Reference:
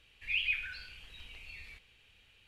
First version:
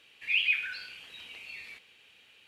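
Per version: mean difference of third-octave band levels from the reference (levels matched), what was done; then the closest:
1.5 dB: high-pass filter 230 Hz 12 dB per octave
level +5.5 dB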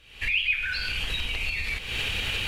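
10.5 dB: camcorder AGC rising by 65 dB per second
level +7 dB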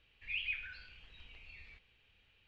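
2.5 dB: high-frequency loss of the air 150 metres
level −4 dB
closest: first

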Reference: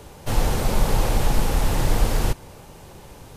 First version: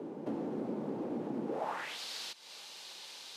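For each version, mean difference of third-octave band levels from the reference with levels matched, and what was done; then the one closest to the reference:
12.5 dB: high-pass filter 170 Hz 24 dB per octave
downward compressor 10 to 1, threshold −37 dBFS, peak gain reduction 14 dB
band-pass filter sweep 290 Hz → 4,100 Hz, 0:01.46–0:01.99
level +10.5 dB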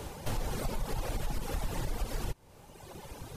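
4.5 dB: reverb reduction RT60 1.5 s
brickwall limiter −13.5 dBFS, peak gain reduction 5.5 dB
downward compressor 3 to 1, threshold −35 dBFS, peak gain reduction 13 dB
level +1.5 dB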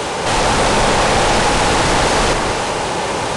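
8.5 dB: mid-hump overdrive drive 39 dB, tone 4,200 Hz, clips at −6.5 dBFS
delay that swaps between a low-pass and a high-pass 189 ms, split 1,800 Hz, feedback 52%, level −2.5 dB
downsampling to 22,050 Hz
level −1.5 dB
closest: second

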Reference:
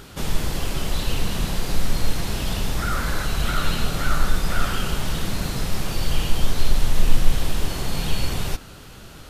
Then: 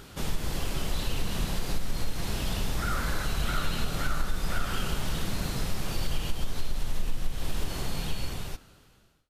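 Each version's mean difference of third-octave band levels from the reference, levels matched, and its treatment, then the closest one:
2.5 dB: fade-out on the ending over 1.61 s
downward compressor 6 to 1, threshold −16 dBFS, peak gain reduction 11 dB
level −5 dB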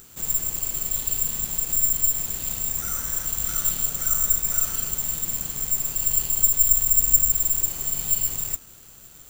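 14.5 dB: wavefolder on the positive side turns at −11 dBFS
bad sample-rate conversion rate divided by 6×, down none, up zero stuff
level −13.5 dB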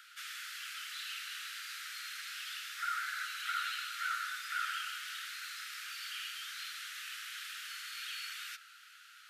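21.5 dB: Butterworth high-pass 1,300 Hz 96 dB per octave
high-shelf EQ 3,100 Hz −10.5 dB
level −4 dB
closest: first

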